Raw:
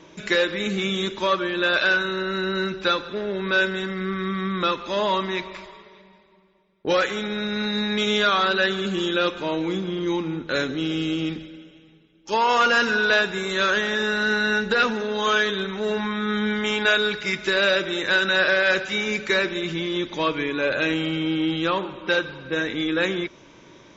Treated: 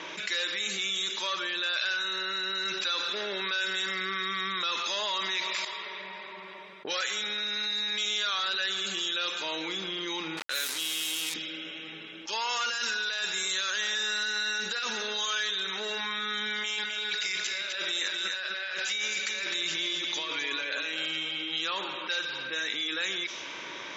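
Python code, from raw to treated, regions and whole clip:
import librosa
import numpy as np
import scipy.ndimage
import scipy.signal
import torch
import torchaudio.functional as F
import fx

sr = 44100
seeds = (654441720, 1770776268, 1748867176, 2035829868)

y = fx.chain(x, sr, fx.low_shelf(hz=72.0, db=-11.5),
    fx.env_flatten(amount_pct=50), at=(2.65, 5.65))
y = fx.chain(y, sr, fx.low_shelf(hz=340.0, db=-8.0),
    fx.sample_gate(floor_db=-32.0), at=(10.37, 11.34))
y = fx.chain(y, sr, fx.bass_treble(bass_db=2, treble_db=3),
    fx.over_compress(threshold_db=-22.0, ratio=-0.5), at=(12.68, 15.3))
y = fx.chain(y, sr, fx.over_compress(threshold_db=-27.0, ratio=-0.5),
    fx.echo_single(ms=256, db=-7.5), at=(16.58, 21.61))
y = np.diff(y, prepend=0.0)
y = fx.env_lowpass(y, sr, base_hz=2200.0, full_db=-32.5)
y = fx.env_flatten(y, sr, amount_pct=70)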